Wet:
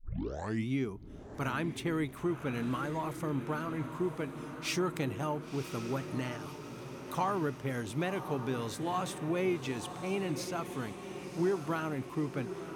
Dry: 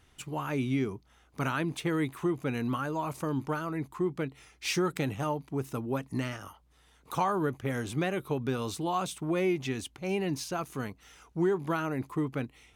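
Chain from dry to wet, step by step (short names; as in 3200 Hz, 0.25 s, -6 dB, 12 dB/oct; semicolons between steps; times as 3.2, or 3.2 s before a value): tape start at the beginning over 0.69 s; diffused feedback echo 1.048 s, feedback 58%, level -9.5 dB; gain -3.5 dB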